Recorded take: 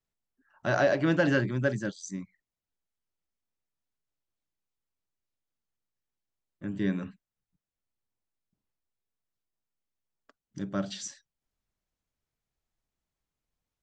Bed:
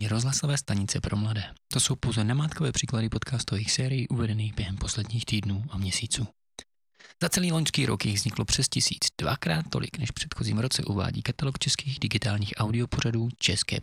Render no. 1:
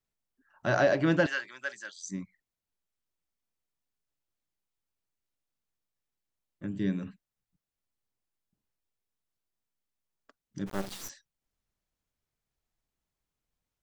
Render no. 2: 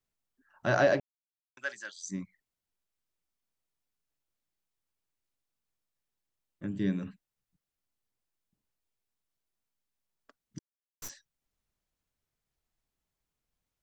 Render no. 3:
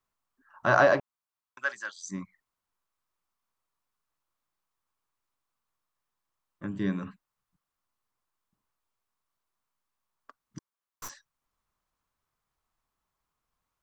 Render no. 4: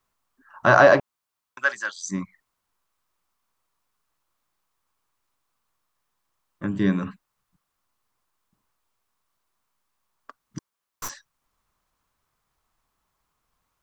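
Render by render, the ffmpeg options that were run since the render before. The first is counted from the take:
-filter_complex "[0:a]asettb=1/sr,asplit=3[s0][s1][s2];[s0]atrim=end=1.264[s3];[s1]atrim=start=1.26:end=1.97,asetpts=PTS-STARTPTS,afade=t=in:d=0.004:c=qsin,afade=t=out:st=0.706:d=0.004:c=qsin,highpass=1300[s4];[s2]atrim=start=1.966[s5];[s3][s4]acrossfade=d=0.004:c1=hsin:c2=qsin[s6];[s6][s5]acrossfade=d=0.004:c1=qsin:c2=hsin,asettb=1/sr,asplit=3[s7][s8][s9];[s7]atrim=end=6.664[s10];[s8]atrim=start=6.66:end=7.07,asetpts=PTS-STARTPTS,afade=t=in:d=0.004:c=qsin,afade=t=out:st=0.406:d=0.004:c=qsin,equalizer=f=1100:w=0.56:g=-7[s11];[s9]atrim=start=7.066[s12];[s10][s11]acrossfade=d=0.004:c1=hsin:c2=qsin[s13];[s13][s12]acrossfade=d=0.004:c1=qsin:c2=hsin,asplit=3[s14][s15][s16];[s14]afade=t=out:st=10.66:d=0.02[s17];[s15]acrusher=bits=4:dc=4:mix=0:aa=0.000001,afade=t=in:st=10.66:d=0.02,afade=t=out:st=11.08:d=0.02[s18];[s16]afade=t=in:st=11.08:d=0.02[s19];[s17][s18][s19]amix=inputs=3:normalize=0"
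-filter_complex "[0:a]asplit=5[s0][s1][s2][s3][s4];[s0]atrim=end=1,asetpts=PTS-STARTPTS,afade=t=out:st=0.996:d=0.004:c=hsin[s5];[s1]atrim=start=1:end=1.57,asetpts=PTS-STARTPTS,volume=0[s6];[s2]atrim=start=1.57:end=10.59,asetpts=PTS-STARTPTS,afade=t=in:d=0.004:c=hsin,afade=t=out:st=9.016:d=0.004:c=hsin[s7];[s3]atrim=start=10.59:end=11.02,asetpts=PTS-STARTPTS,volume=0[s8];[s4]atrim=start=11.02,asetpts=PTS-STARTPTS,afade=t=in:d=0.004:c=hsin[s9];[s5][s6][s7][s8][s9]concat=n=5:v=0:a=1"
-af "equalizer=f=1100:w=1.6:g=13.5"
-af "volume=2.51,alimiter=limit=0.708:level=0:latency=1"

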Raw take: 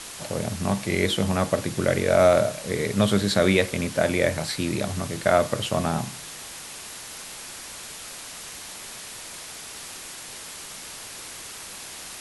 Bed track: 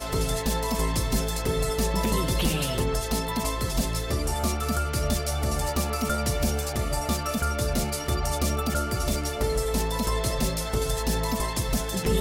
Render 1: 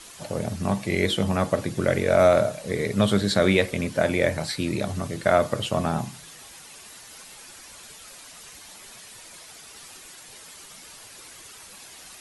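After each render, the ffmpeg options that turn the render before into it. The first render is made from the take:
-af "afftdn=nr=9:nf=-39"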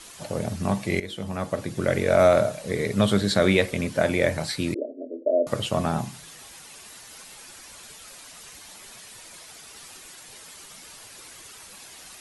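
-filter_complex "[0:a]asettb=1/sr,asplit=3[s0][s1][s2];[s0]atrim=end=4.744[s3];[s1]atrim=start=4.74:end=5.47,asetpts=PTS-STARTPTS,afade=t=in:d=0.004:c=qsin,afade=t=out:st=0.726:d=0.004:c=qsin,asuperpass=centerf=400:order=20:qfactor=0.99[s4];[s2]atrim=start=5.466[s5];[s3][s4]acrossfade=d=0.004:c1=hsin:c2=qsin[s6];[s6][s5]acrossfade=d=0.004:c1=qsin:c2=hsin,asplit=2[s7][s8];[s7]atrim=end=1,asetpts=PTS-STARTPTS,afade=t=out:st=0.996:d=0.004:c=hsin:silence=0.177828[s9];[s8]atrim=start=1,asetpts=PTS-STARTPTS,afade=t=in:d=1.03:silence=0.177828[s10];[s9][s10]concat=n=2:v=0:a=1"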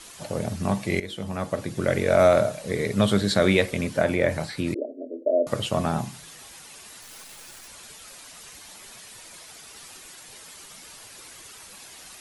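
-filter_complex "[0:a]asettb=1/sr,asplit=3[s0][s1][s2];[s0]atrim=end=3.964[s3];[s1]atrim=start=3.96:end=4.85,asetpts=PTS-STARTPTS,afade=t=in:d=0.004:c=qsin,afade=t=out:st=0.886:d=0.004:c=qsin,acrossover=split=2700[s4][s5];[s5]acompressor=threshold=0.01:ratio=4:attack=1:release=60[s6];[s4][s6]amix=inputs=2:normalize=0[s7];[s2]atrim=start=4.846[s8];[s3][s7]acrossfade=d=0.004:c1=hsin:c2=qsin[s9];[s9][s8]acrossfade=d=0.004:c1=qsin:c2=hsin,asettb=1/sr,asplit=3[s10][s11][s12];[s10]atrim=end=7.024[s13];[s11]atrim=start=7.02:end=7.68,asetpts=PTS-STARTPTS,afade=t=in:d=0.004:c=qsin,afade=t=out:st=0.656:d=0.004:c=qsin,acrusher=bits=8:dc=4:mix=0:aa=0.000001[s14];[s12]atrim=start=7.676[s15];[s13][s14]acrossfade=d=0.004:c1=hsin:c2=qsin[s16];[s16][s15]acrossfade=d=0.004:c1=qsin:c2=hsin"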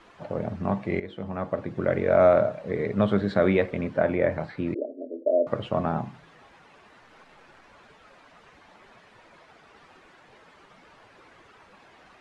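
-af "lowpass=1600,lowshelf=f=130:g=-6.5"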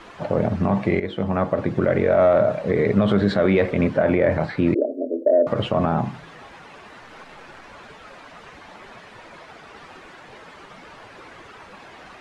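-filter_complex "[0:a]asplit=2[s0][s1];[s1]acontrast=85,volume=1.06[s2];[s0][s2]amix=inputs=2:normalize=0,alimiter=limit=0.355:level=0:latency=1:release=54"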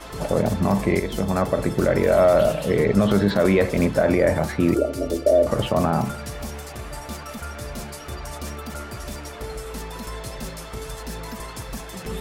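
-filter_complex "[1:a]volume=0.422[s0];[0:a][s0]amix=inputs=2:normalize=0"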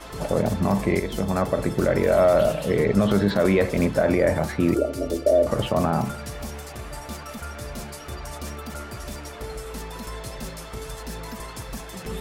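-af "volume=0.841"

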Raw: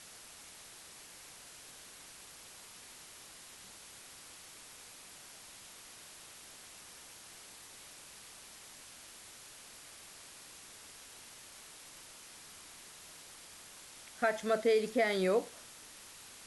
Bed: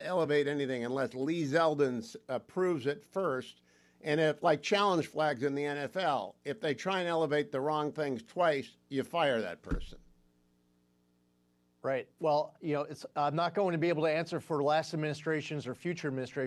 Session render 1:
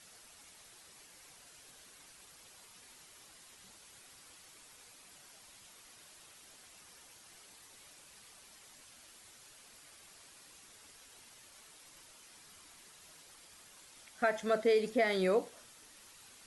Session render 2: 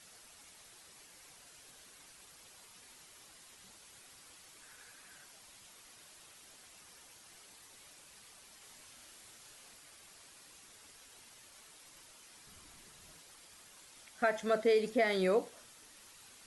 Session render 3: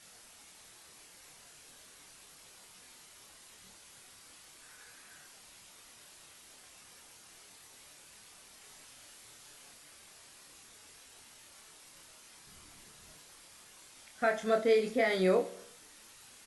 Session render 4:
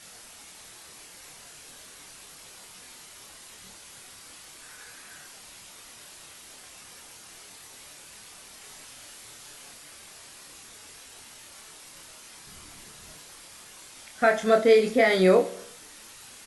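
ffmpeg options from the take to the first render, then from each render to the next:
-af "afftdn=nr=7:nf=-54"
-filter_complex "[0:a]asettb=1/sr,asplit=3[s0][s1][s2];[s0]atrim=end=4.624[s3];[s1]atrim=start=4.62:end=5.24,asetpts=PTS-STARTPTS,afade=t=in:d=0.004:c=qsin,afade=t=out:st=0.616:d=0.004:c=qsin,equalizer=f=1600:t=o:w=0.36:g=11.5[s4];[s2]atrim=start=5.236[s5];[s3][s4]acrossfade=d=0.004:c1=hsin:c2=qsin[s6];[s6][s5]acrossfade=d=0.004:c1=qsin:c2=hsin,asettb=1/sr,asplit=3[s7][s8][s9];[s7]atrim=end=8.584[s10];[s8]atrim=start=8.58:end=9.74,asetpts=PTS-STARTPTS,afade=t=in:d=0.004:c=qsin,afade=t=out:st=1.156:d=0.004:c=qsin,asplit=2[s11][s12];[s12]adelay=34,volume=0.562[s13];[s11][s13]amix=inputs=2:normalize=0,atrim=end_sample=51156[s14];[s9]atrim=start=9.736[s15];[s10][s14]acrossfade=d=0.004:c1=hsin:c2=qsin[s16];[s16][s15]acrossfade=d=0.004:c1=qsin:c2=hsin,asettb=1/sr,asplit=3[s17][s18][s19];[s17]atrim=end=12.474[s20];[s18]atrim=start=12.47:end=13.19,asetpts=PTS-STARTPTS,afade=t=in:d=0.004:c=qsin,afade=t=out:st=0.716:d=0.004:c=qsin,lowshelf=f=240:g=10[s21];[s19]atrim=start=13.186[s22];[s20][s21]acrossfade=d=0.004:c1=hsin:c2=qsin[s23];[s23][s22]acrossfade=d=0.004:c1=qsin:c2=hsin"
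-filter_complex "[0:a]asplit=2[s0][s1];[s1]adelay=27,volume=0.631[s2];[s0][s2]amix=inputs=2:normalize=0,aecho=1:1:70|140|210|280|350:0.106|0.0625|0.0369|0.0218|0.0128"
-af "volume=2.66"

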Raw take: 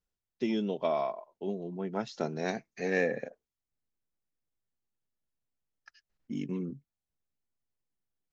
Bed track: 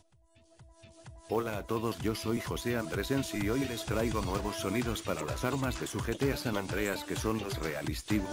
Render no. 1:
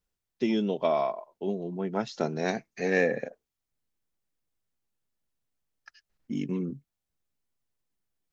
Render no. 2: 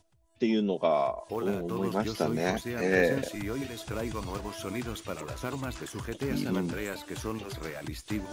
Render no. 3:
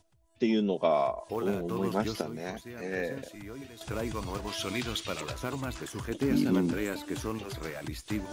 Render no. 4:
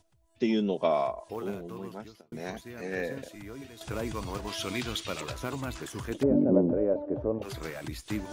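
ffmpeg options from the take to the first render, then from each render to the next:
-af "volume=1.58"
-filter_complex "[1:a]volume=0.708[s0];[0:a][s0]amix=inputs=2:normalize=0"
-filter_complex "[0:a]asettb=1/sr,asplit=3[s0][s1][s2];[s0]atrim=end=4.474[s3];[s1]atrim=start=4.47:end=5.32,asetpts=PTS-STARTPTS,afade=t=in:d=0.004:c=qsin,afade=t=out:st=0.846:d=0.004:c=qsin,equalizer=f=3700:t=o:w=1.6:g=10.5[s4];[s2]atrim=start=5.316[s5];[s3][s4]acrossfade=d=0.004:c1=hsin:c2=qsin[s6];[s6][s5]acrossfade=d=0.004:c1=qsin:c2=hsin,asettb=1/sr,asplit=3[s7][s8][s9];[s7]atrim=end=6.104[s10];[s8]atrim=start=6.1:end=7.25,asetpts=PTS-STARTPTS,afade=t=in:d=0.004:c=qsin,afade=t=out:st=1.146:d=0.004:c=qsin,equalizer=f=280:t=o:w=0.77:g=7[s11];[s9]atrim=start=7.246[s12];[s10][s11]acrossfade=d=0.004:c1=hsin:c2=qsin[s13];[s13][s12]acrossfade=d=0.004:c1=qsin:c2=hsin,asplit=3[s14][s15][s16];[s14]atrim=end=2.212[s17];[s15]atrim=start=2.208:end=3.812,asetpts=PTS-STARTPTS,volume=0.355[s18];[s16]atrim=start=3.808[s19];[s17][s18]acrossfade=d=0.004:c1=hsin:c2=hsin[s20];[s20][s19]acrossfade=d=0.004:c1=hsin:c2=hsin"
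-filter_complex "[0:a]asettb=1/sr,asplit=3[s0][s1][s2];[s0]atrim=end=6.234[s3];[s1]atrim=start=6.23:end=7.42,asetpts=PTS-STARTPTS,afade=t=in:d=0.004:c=qsin,afade=t=out:st=1.186:d=0.004:c=qsin,lowpass=f=580:t=q:w=6.1[s4];[s2]atrim=start=7.416[s5];[s3][s4]acrossfade=d=0.004:c1=hsin:c2=qsin[s6];[s6][s5]acrossfade=d=0.004:c1=qsin:c2=hsin,asplit=2[s7][s8];[s7]atrim=end=2.32,asetpts=PTS-STARTPTS,afade=t=out:st=0.87:d=1.45[s9];[s8]atrim=start=2.32,asetpts=PTS-STARTPTS,afade=t=in:d=0.004:c=hsin[s10];[s9][s10]concat=n=2:v=0:a=1"

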